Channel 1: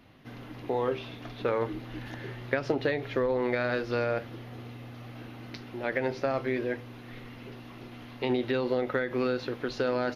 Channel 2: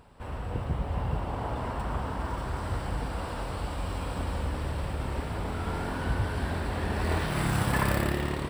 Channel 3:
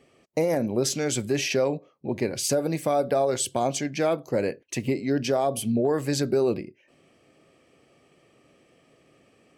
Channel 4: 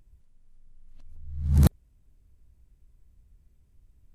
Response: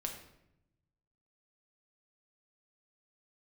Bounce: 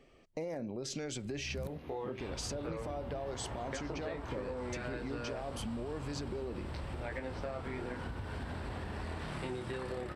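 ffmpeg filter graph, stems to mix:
-filter_complex "[0:a]flanger=delay=18:depth=7.2:speed=0.35,adelay=1200,volume=0.668[s0];[1:a]lowpass=f=8700:w=0.5412,lowpass=f=8700:w=1.3066,acompressor=threshold=0.0251:ratio=6,adelay=2000,volume=0.708[s1];[2:a]lowpass=6000,alimiter=limit=0.0794:level=0:latency=1:release=67,volume=0.668[s2];[3:a]volume=0.158,asplit=2[s3][s4];[s4]volume=0.282[s5];[4:a]atrim=start_sample=2205[s6];[s5][s6]afir=irnorm=-1:irlink=0[s7];[s0][s1][s2][s3][s7]amix=inputs=5:normalize=0,acompressor=threshold=0.0158:ratio=6"

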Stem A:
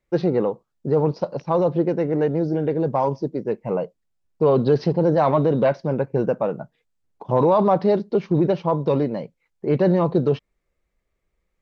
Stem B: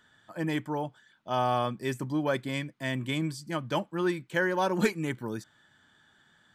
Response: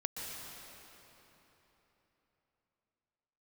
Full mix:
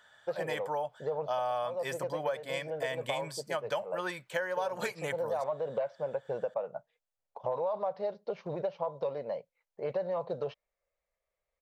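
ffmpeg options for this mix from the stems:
-filter_complex "[0:a]adelay=150,volume=0.355[s0];[1:a]volume=1.19,asplit=2[s1][s2];[s2]apad=whole_len=518796[s3];[s0][s3]sidechaincompress=threshold=0.0355:ratio=8:attack=48:release=677[s4];[s4][s1]amix=inputs=2:normalize=0,lowshelf=f=420:t=q:w=3:g=-10,acompressor=threshold=0.0316:ratio=6"

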